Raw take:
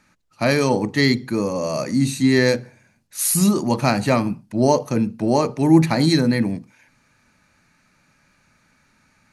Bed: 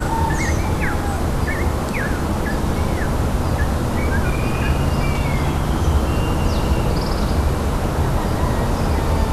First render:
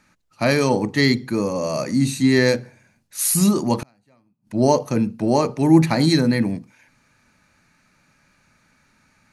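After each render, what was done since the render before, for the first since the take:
0:03.82–0:04.47: gate with flip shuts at −19 dBFS, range −40 dB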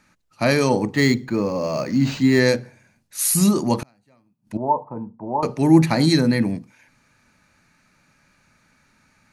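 0:00.94–0:02.40: linearly interpolated sample-rate reduction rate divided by 4×
0:04.57–0:05.43: transistor ladder low-pass 990 Hz, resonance 80%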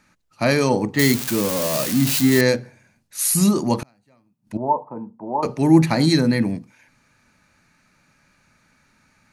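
0:00.99–0:02.41: spike at every zero crossing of −12 dBFS
0:04.73–0:05.46: high-pass filter 170 Hz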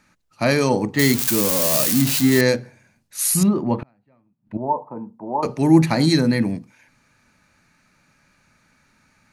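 0:01.18–0:02.02: high-shelf EQ 5,000 Hz +8 dB
0:03.43–0:04.77: high-frequency loss of the air 470 metres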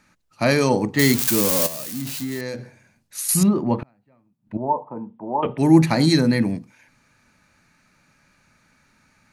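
0:01.66–0:03.29: downward compressor 10 to 1, threshold −24 dBFS
0:04.63–0:05.58: bad sample-rate conversion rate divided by 6×, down none, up filtered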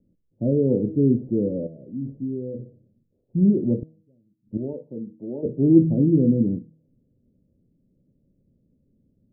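Butterworth low-pass 510 Hz 48 dB per octave
hum removal 158.9 Hz, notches 27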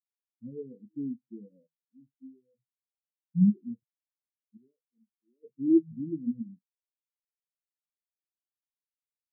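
downward compressor 4 to 1, threshold −20 dBFS, peak gain reduction 10 dB
every bin expanded away from the loudest bin 4 to 1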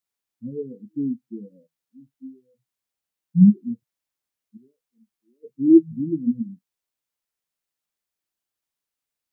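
level +9 dB

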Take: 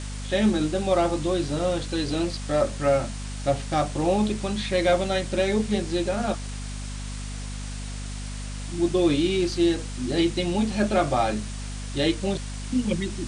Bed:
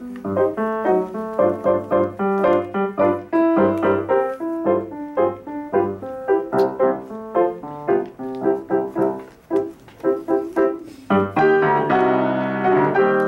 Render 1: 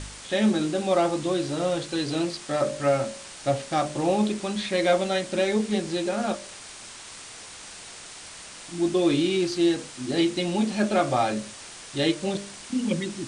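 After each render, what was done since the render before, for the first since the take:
hum removal 50 Hz, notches 12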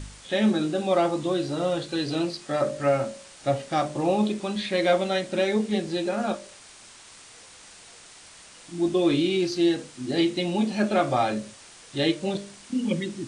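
noise reduction from a noise print 6 dB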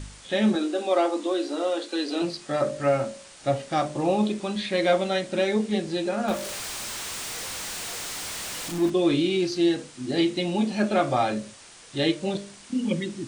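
0:00.55–0:02.22: Butterworth high-pass 230 Hz 72 dB per octave
0:06.28–0:08.90: converter with a step at zero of −29.5 dBFS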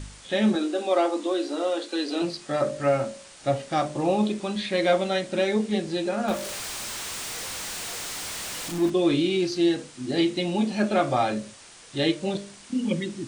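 no processing that can be heard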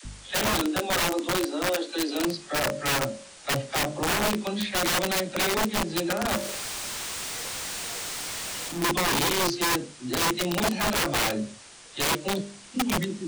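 all-pass dispersion lows, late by 54 ms, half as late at 410 Hz
wrap-around overflow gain 19.5 dB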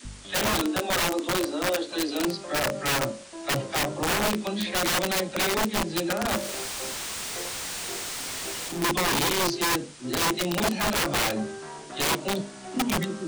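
mix in bed −23.5 dB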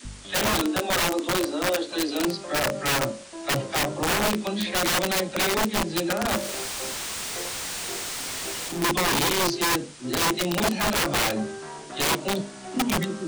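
level +1.5 dB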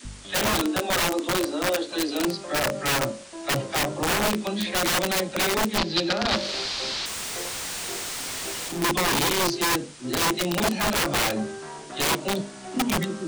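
0:05.78–0:07.06: low-pass with resonance 4,400 Hz, resonance Q 3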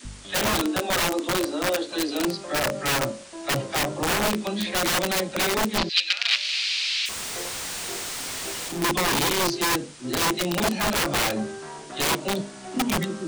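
0:05.89–0:07.09: high-pass with resonance 2,500 Hz, resonance Q 3

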